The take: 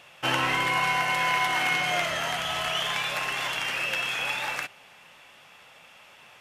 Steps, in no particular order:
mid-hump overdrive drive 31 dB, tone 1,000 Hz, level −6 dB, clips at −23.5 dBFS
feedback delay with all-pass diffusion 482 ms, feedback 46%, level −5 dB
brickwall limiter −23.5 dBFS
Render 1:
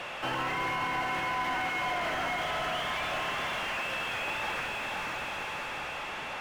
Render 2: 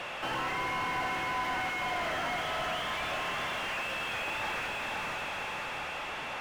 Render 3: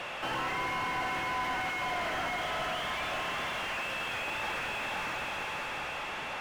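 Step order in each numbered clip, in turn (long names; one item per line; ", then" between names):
feedback delay with all-pass diffusion, then mid-hump overdrive, then brickwall limiter
brickwall limiter, then feedback delay with all-pass diffusion, then mid-hump overdrive
feedback delay with all-pass diffusion, then brickwall limiter, then mid-hump overdrive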